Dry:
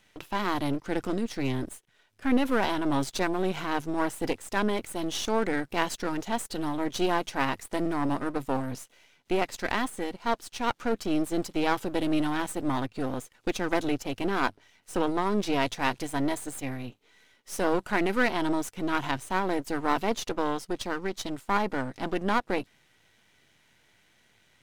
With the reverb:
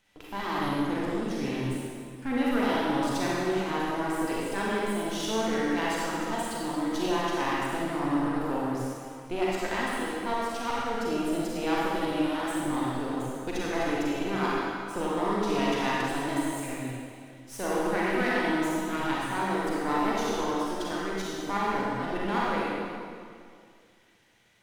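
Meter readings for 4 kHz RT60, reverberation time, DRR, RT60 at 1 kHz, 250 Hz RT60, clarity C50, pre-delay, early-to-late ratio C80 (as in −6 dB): 1.9 s, 2.2 s, −6.5 dB, 2.2 s, 2.3 s, −5.0 dB, 35 ms, −2.0 dB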